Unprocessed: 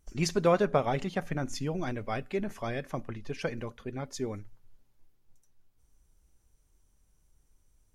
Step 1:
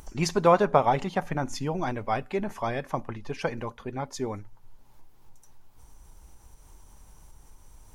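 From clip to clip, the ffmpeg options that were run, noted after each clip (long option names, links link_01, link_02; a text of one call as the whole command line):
ffmpeg -i in.wav -af "equalizer=frequency=910:width=2.1:gain=10.5,acompressor=mode=upward:threshold=-38dB:ratio=2.5,volume=2dB" out.wav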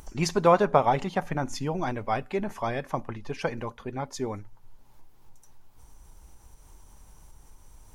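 ffmpeg -i in.wav -af anull out.wav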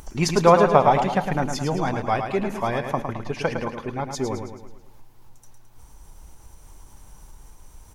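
ffmpeg -i in.wav -af "aecho=1:1:108|216|324|432|540|648:0.447|0.228|0.116|0.0593|0.0302|0.0154,volume=4.5dB" out.wav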